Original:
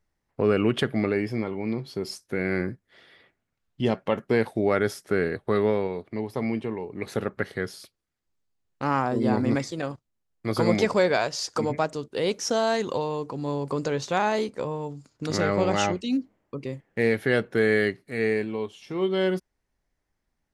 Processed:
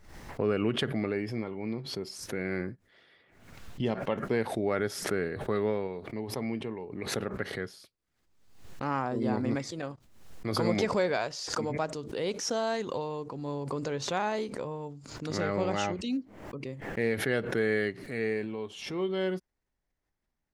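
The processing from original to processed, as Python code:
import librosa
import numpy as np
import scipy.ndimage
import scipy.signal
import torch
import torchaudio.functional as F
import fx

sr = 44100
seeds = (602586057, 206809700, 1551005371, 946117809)

y = fx.transient(x, sr, attack_db=-4, sustain_db=3, at=(18.42, 18.92), fade=0.02)
y = fx.high_shelf(y, sr, hz=7800.0, db=-5.0)
y = fx.pre_swell(y, sr, db_per_s=66.0)
y = y * 10.0 ** (-6.5 / 20.0)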